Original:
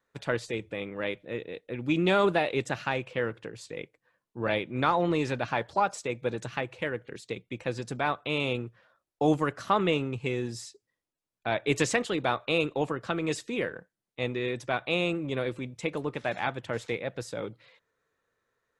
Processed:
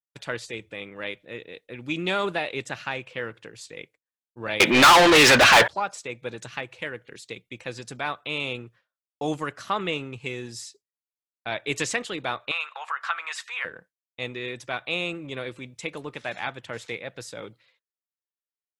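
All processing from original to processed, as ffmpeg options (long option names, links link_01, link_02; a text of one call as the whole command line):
ffmpeg -i in.wav -filter_complex "[0:a]asettb=1/sr,asplit=3[link_01][link_02][link_03];[link_01]atrim=end=4.604[link_04];[link_02]atrim=start=4.6:end=5.68,asetpts=PTS-STARTPTS,afade=type=in:duration=0.004:curve=qsin,afade=type=out:start_time=1.076:duration=0.004:curve=qsin,highpass=80,acontrast=39,asplit=2[link_05][link_06];[link_06]highpass=frequency=720:poles=1,volume=35dB,asoftclip=type=tanh:threshold=-5.5dB[link_07];[link_05][link_07]amix=inputs=2:normalize=0,lowpass=frequency=5800:poles=1,volume=-6dB[link_08];[link_03]atrim=start=5.676[link_09];[link_04][link_08]acrossfade=duration=0.004:curve1=hsin:curve2=qsin[link_10];[link_10][link_09]acrossfade=duration=0.004:curve1=qsin:curve2=hsin,asettb=1/sr,asplit=3[link_11][link_12][link_13];[link_11]atrim=end=12.514[link_14];[link_12]atrim=start=12.51:end=13.65,asetpts=PTS-STARTPTS,afade=type=in:duration=0.004:curve=qsin,afade=type=out:start_time=1.136:duration=0.004:curve=qsin,acompressor=threshold=-35dB:ratio=2:attack=3.2:release=140:knee=1:detection=peak,highpass=frequency=830:width=0.5412,highpass=frequency=830:width=1.3066,equalizer=frequency=1300:width=0.56:gain=15[link_15];[link_13]atrim=start=13.646[link_16];[link_14][link_15]acrossfade=duration=0.004:curve1=hsin:curve2=qsin[link_17];[link_17][link_16]acrossfade=duration=0.004:curve1=qsin:curve2=hsin,tiltshelf=frequency=1400:gain=-5,agate=range=-33dB:threshold=-48dB:ratio=3:detection=peak,adynamicequalizer=threshold=0.00708:dfrequency=3600:dqfactor=0.7:tfrequency=3600:tqfactor=0.7:attack=5:release=100:ratio=0.375:range=2:mode=cutabove:tftype=highshelf" out.wav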